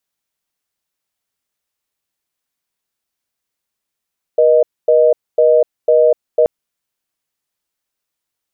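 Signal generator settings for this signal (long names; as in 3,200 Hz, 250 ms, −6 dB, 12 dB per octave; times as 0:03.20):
call progress tone reorder tone, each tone −10 dBFS 2.08 s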